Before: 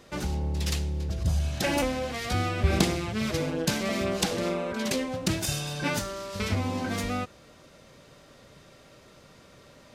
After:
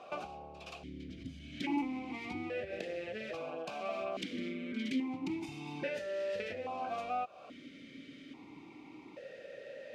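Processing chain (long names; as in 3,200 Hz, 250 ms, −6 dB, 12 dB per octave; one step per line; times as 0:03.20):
downward compressor 6 to 1, threshold −38 dBFS, peak gain reduction 19.5 dB
formant filter that steps through the vowels 1.2 Hz
level +14.5 dB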